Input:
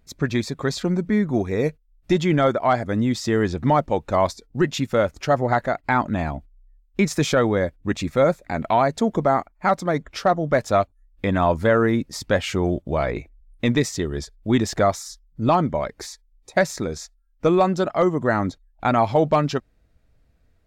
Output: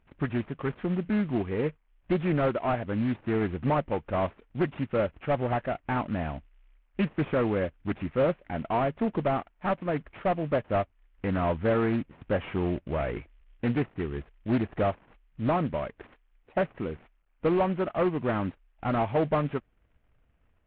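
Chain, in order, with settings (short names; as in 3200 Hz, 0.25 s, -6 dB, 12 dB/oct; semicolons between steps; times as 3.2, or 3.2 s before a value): CVSD 16 kbps; Doppler distortion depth 0.34 ms; gain -6 dB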